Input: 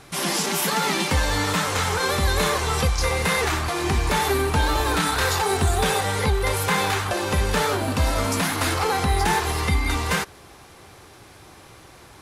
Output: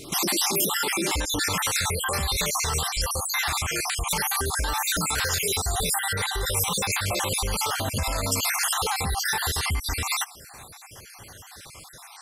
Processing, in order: random holes in the spectrogram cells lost 55%; peaking EQ 330 Hz +10 dB 0.85 oct, from 1.49 s -7.5 dB; peak limiter -22 dBFS, peak gain reduction 11.5 dB; treble shelf 4 kHz +10.5 dB; trim +2.5 dB

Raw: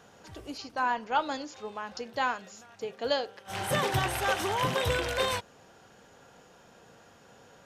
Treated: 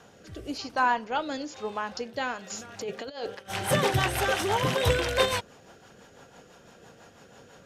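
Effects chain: 2.50–3.35 s: compressor with a negative ratio -39 dBFS, ratio -1; rotary cabinet horn 1 Hz, later 6 Hz, at 2.20 s; trim +6 dB

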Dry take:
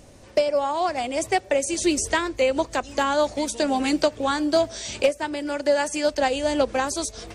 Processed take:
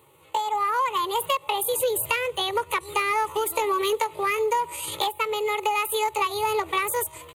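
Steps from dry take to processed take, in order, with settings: bass shelf 470 Hz -4 dB; static phaser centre 750 Hz, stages 8; level rider gain up to 10 dB; pitch shift +6.5 st; high-pass 93 Hz 24 dB/octave; peaking EQ 1.8 kHz +6.5 dB 0.35 oct; in parallel at -6 dB: hard clipper -14 dBFS, distortion -12 dB; on the sum: compression, threshold -15 dBFS, peak gain reduction 7.5 dB; trim -6 dB

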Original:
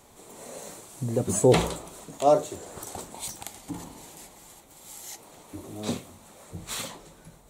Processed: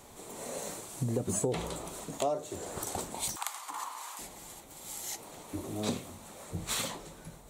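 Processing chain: compression 10:1, threshold -30 dBFS, peak gain reduction 17 dB; 3.36–4.19 s: resonant high-pass 1.1 kHz, resonance Q 4.9; trim +2 dB

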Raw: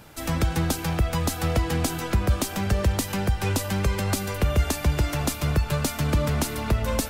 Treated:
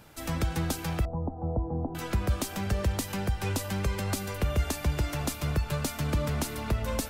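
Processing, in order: 1.05–1.95 s: elliptic low-pass 880 Hz, stop band 80 dB; trim -5.5 dB

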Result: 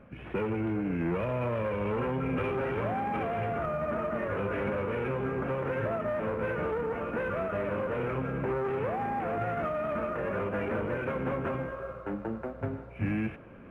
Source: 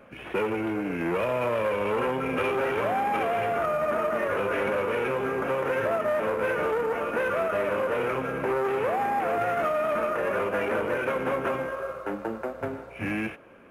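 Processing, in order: tone controls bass +13 dB, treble -12 dB; reverse; upward compressor, threshold -35 dBFS; reverse; trim -6.5 dB

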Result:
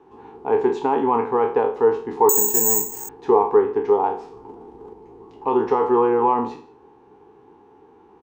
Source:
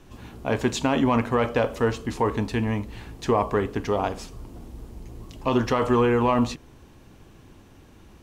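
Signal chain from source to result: spectral sustain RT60 0.40 s; 4.27–4.93 s: transient shaper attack +6 dB, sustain +10 dB; two resonant band-passes 600 Hz, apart 0.98 oct; on a send: delay 167 ms -24 dB; 2.29–3.09 s: on the sum: careless resampling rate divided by 6×, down none, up zero stuff; loudness maximiser +12 dB; trim -1 dB

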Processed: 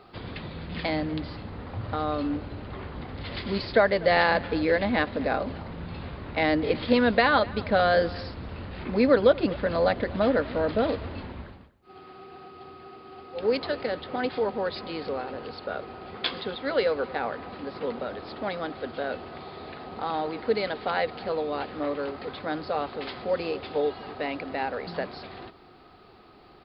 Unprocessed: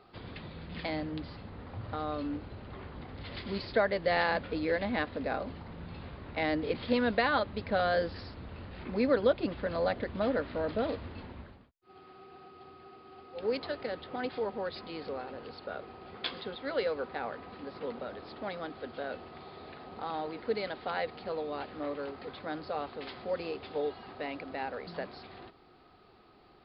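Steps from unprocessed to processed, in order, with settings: echo from a far wall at 42 m, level -20 dB; trim +7 dB

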